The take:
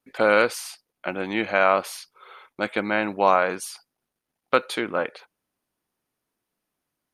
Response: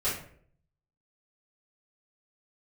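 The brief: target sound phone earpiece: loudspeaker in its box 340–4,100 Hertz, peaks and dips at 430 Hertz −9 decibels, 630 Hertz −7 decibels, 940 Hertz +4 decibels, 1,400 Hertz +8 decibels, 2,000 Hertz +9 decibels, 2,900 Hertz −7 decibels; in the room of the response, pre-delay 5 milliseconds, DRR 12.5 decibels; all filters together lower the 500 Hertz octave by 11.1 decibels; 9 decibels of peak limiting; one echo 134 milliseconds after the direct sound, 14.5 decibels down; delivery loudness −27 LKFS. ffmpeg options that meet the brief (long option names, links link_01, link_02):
-filter_complex "[0:a]equalizer=frequency=500:width_type=o:gain=-6,alimiter=limit=-14dB:level=0:latency=1,aecho=1:1:134:0.188,asplit=2[link_01][link_02];[1:a]atrim=start_sample=2205,adelay=5[link_03];[link_02][link_03]afir=irnorm=-1:irlink=0,volume=-21dB[link_04];[link_01][link_04]amix=inputs=2:normalize=0,highpass=340,equalizer=frequency=430:width_type=q:width=4:gain=-9,equalizer=frequency=630:width_type=q:width=4:gain=-7,equalizer=frequency=940:width_type=q:width=4:gain=4,equalizer=frequency=1400:width_type=q:width=4:gain=8,equalizer=frequency=2000:width_type=q:width=4:gain=9,equalizer=frequency=2900:width_type=q:width=4:gain=-7,lowpass=frequency=4100:width=0.5412,lowpass=frequency=4100:width=1.3066,volume=-1dB"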